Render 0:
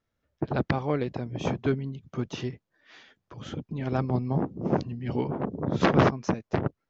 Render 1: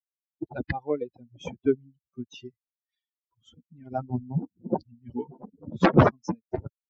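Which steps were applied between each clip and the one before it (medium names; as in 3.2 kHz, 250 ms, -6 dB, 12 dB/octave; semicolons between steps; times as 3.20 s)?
expander on every frequency bin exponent 3; treble shelf 2.7 kHz -9.5 dB; trim +8 dB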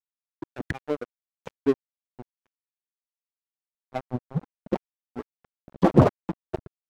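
low-pass that closes with the level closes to 880 Hz, closed at -23.5 dBFS; crossover distortion -31.5 dBFS; trim +2.5 dB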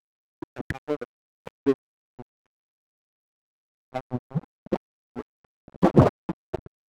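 median filter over 9 samples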